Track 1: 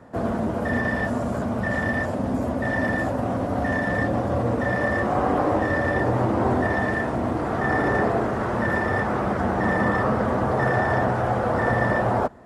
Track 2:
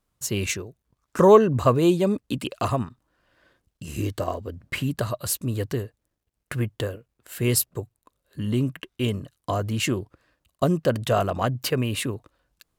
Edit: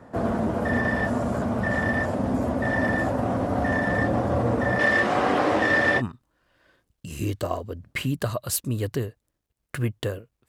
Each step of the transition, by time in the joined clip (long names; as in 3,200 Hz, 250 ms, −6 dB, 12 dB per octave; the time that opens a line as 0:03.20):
track 1
0:04.79–0:06.02: meter weighting curve D
0:05.99: continue with track 2 from 0:02.76, crossfade 0.06 s